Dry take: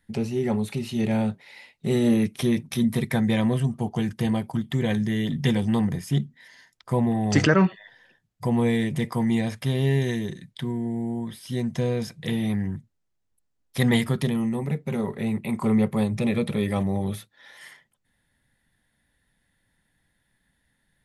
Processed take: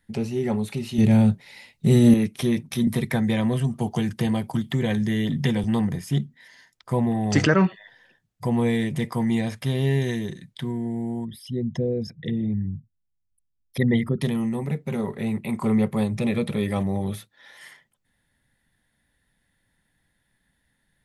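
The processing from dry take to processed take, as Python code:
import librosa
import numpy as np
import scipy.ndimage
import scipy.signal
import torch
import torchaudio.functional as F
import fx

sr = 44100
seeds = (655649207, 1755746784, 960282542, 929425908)

y = fx.bass_treble(x, sr, bass_db=11, treble_db=6, at=(0.98, 2.14))
y = fx.band_squash(y, sr, depth_pct=70, at=(2.87, 5.64))
y = fx.envelope_sharpen(y, sr, power=2.0, at=(11.24, 14.21), fade=0.02)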